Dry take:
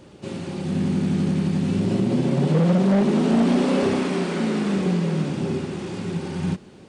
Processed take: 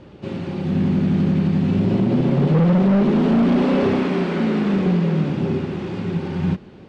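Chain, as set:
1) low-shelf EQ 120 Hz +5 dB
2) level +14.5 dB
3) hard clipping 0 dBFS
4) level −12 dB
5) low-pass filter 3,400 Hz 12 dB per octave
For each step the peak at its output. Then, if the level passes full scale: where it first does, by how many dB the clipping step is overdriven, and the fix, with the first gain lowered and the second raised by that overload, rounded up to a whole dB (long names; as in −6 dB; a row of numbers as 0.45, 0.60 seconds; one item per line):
−9.0, +5.5, 0.0, −12.0, −12.0 dBFS
step 2, 5.5 dB
step 2 +8.5 dB, step 4 −6 dB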